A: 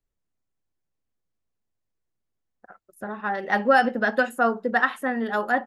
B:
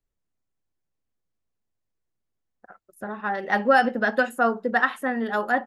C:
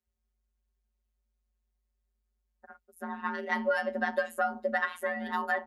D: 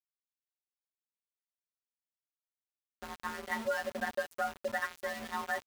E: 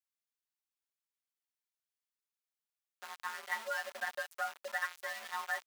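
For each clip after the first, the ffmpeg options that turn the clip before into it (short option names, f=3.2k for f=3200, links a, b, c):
-af anull
-af "afftfilt=real='hypot(re,im)*cos(PI*b)':imag='0':win_size=1024:overlap=0.75,afreqshift=50,acompressor=threshold=-25dB:ratio=5"
-af "aeval=exprs='val(0)*gte(abs(val(0)),0.0188)':c=same,volume=-5dB"
-af "highpass=900"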